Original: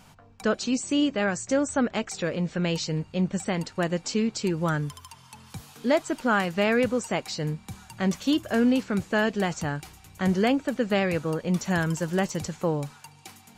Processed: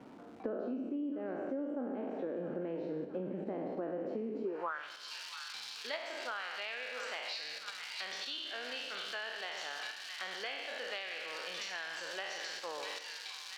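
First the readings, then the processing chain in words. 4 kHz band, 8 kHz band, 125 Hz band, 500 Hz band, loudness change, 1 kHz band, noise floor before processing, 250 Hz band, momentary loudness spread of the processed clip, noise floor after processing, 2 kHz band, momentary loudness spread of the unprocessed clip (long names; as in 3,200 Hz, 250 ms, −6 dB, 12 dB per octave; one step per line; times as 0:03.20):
−5.0 dB, −14.5 dB, −25.0 dB, −13.0 dB, −13.0 dB, −12.5 dB, −53 dBFS, −16.5 dB, 4 LU, −49 dBFS, −9.0 dB, 9 LU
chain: peak hold with a decay on every bin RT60 1.03 s
three-way crossover with the lows and the highs turned down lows −18 dB, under 310 Hz, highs −23 dB, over 3,600 Hz
on a send: echo with a time of its own for lows and highs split 980 Hz, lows 134 ms, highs 663 ms, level −11 dB
on the sum: surface crackle 560 per second −36 dBFS
in parallel at +2.5 dB: output level in coarse steps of 18 dB
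on the sum: band-pass filter sweep 270 Hz → 4,400 Hz, 0:04.41–0:04.92
downward compressor 6 to 1, threshold −46 dBFS, peak gain reduction 21 dB
dynamic equaliser 620 Hz, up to +4 dB, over −56 dBFS, Q 0.86
level +7 dB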